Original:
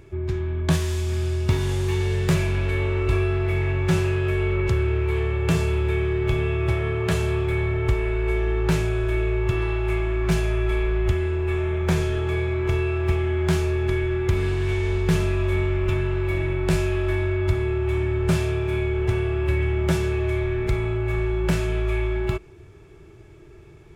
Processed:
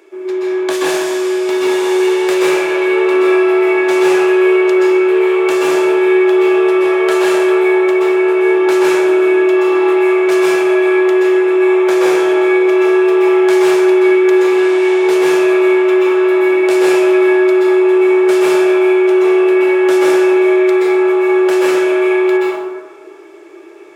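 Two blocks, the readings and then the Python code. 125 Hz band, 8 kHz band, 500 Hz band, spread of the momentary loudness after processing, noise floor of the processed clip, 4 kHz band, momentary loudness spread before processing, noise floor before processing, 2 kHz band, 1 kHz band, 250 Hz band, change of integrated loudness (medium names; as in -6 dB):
under -25 dB, no reading, +16.5 dB, 3 LU, -33 dBFS, +10.5 dB, 2 LU, -46 dBFS, +13.0 dB, +15.0 dB, +15.0 dB, +12.5 dB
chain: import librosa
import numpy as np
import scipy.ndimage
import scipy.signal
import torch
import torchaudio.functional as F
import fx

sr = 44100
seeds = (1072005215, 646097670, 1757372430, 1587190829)

y = scipy.signal.sosfilt(scipy.signal.cheby1(4, 1.0, 330.0, 'highpass', fs=sr, output='sos'), x)
y = fx.rev_plate(y, sr, seeds[0], rt60_s=1.4, hf_ratio=0.45, predelay_ms=115, drr_db=-6.5)
y = y * 10.0 ** (6.5 / 20.0)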